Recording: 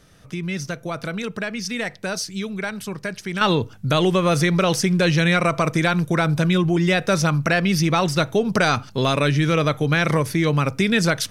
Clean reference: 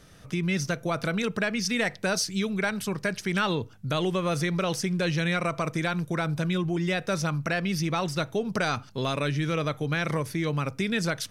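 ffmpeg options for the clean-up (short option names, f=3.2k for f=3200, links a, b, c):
-af "asetnsamples=n=441:p=0,asendcmd='3.41 volume volume -8.5dB',volume=0dB"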